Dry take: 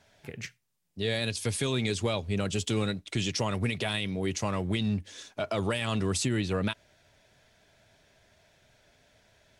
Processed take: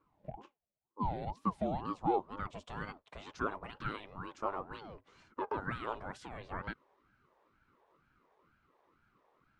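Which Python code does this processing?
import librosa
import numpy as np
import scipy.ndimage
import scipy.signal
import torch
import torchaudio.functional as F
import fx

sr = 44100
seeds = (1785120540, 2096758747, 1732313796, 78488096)

y = fx.filter_sweep_bandpass(x, sr, from_hz=370.0, to_hz=840.0, start_s=1.15, end_s=2.69, q=5.8)
y = fx.ring_lfo(y, sr, carrier_hz=450.0, swing_pct=60, hz=2.1)
y = y * librosa.db_to_amplitude(8.5)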